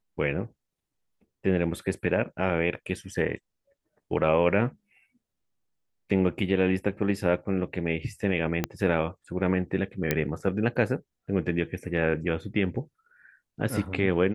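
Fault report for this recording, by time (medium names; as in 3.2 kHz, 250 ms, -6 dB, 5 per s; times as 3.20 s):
8.64 s: pop -11 dBFS
10.11 s: pop -9 dBFS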